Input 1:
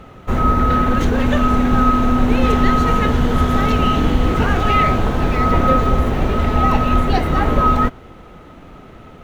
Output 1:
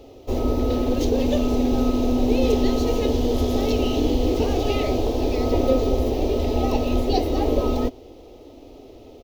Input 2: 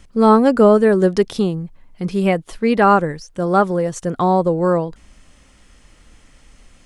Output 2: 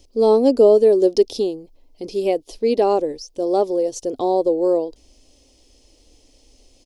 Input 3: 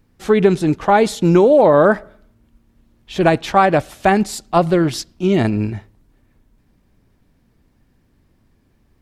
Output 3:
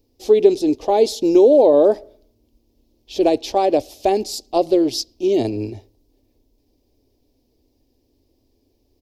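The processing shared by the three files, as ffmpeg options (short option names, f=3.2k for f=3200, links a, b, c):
-af "firequalizer=gain_entry='entry(100,0);entry(170,-17);entry(260,6);entry(430,9);entry(770,2);entry(1400,-19);entry(2500,-1);entry(5000,12);entry(8200,1);entry(14000,10)':delay=0.05:min_phase=1,volume=-7dB"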